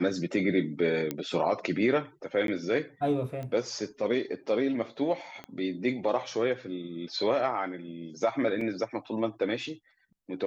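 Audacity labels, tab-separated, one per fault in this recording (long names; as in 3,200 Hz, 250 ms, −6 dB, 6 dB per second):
1.110000	1.110000	click −16 dBFS
2.470000	2.480000	drop-out 12 ms
3.430000	3.430000	click −26 dBFS
5.440000	5.440000	click −26 dBFS
8.610000	8.610000	drop-out 3.7 ms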